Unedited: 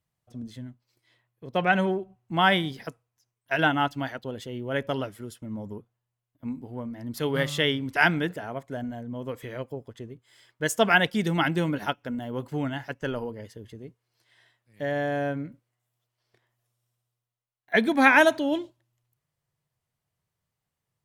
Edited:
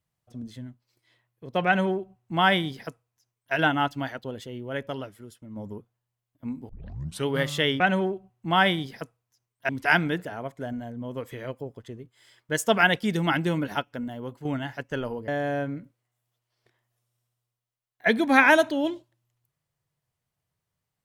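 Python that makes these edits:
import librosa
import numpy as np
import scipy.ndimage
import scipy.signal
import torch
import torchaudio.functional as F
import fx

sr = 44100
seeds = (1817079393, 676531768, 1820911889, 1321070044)

y = fx.edit(x, sr, fx.duplicate(start_s=1.66, length_s=1.89, to_s=7.8),
    fx.fade_out_to(start_s=4.25, length_s=1.31, curve='qua', floor_db=-6.5),
    fx.tape_start(start_s=6.69, length_s=0.58),
    fx.fade_out_to(start_s=11.91, length_s=0.65, curve='qsin', floor_db=-9.0),
    fx.cut(start_s=13.39, length_s=1.57), tone=tone)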